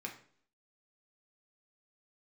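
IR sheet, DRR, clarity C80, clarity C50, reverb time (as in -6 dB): 0.0 dB, 14.0 dB, 10.0 dB, 0.55 s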